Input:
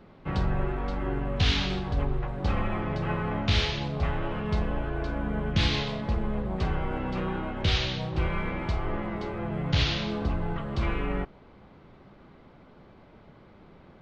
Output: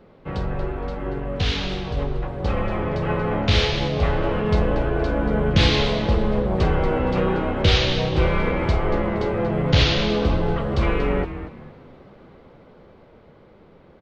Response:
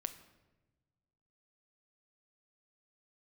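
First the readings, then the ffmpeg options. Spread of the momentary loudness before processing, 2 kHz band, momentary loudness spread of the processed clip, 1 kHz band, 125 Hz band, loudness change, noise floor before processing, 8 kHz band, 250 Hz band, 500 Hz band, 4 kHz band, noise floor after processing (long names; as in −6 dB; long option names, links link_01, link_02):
6 LU, +6.5 dB, 10 LU, +7.0 dB, +6.5 dB, +7.5 dB, −54 dBFS, can't be measured, +7.0 dB, +11.5 dB, +6.5 dB, −50 dBFS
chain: -filter_complex "[0:a]equalizer=frequency=490:width_type=o:width=0.53:gain=8,dynaudnorm=framelen=880:gausssize=7:maxgain=8dB,asplit=4[link_01][link_02][link_03][link_04];[link_02]adelay=234,afreqshift=-99,volume=-11dB[link_05];[link_03]adelay=468,afreqshift=-198,volume=-21.5dB[link_06];[link_04]adelay=702,afreqshift=-297,volume=-31.9dB[link_07];[link_01][link_05][link_06][link_07]amix=inputs=4:normalize=0"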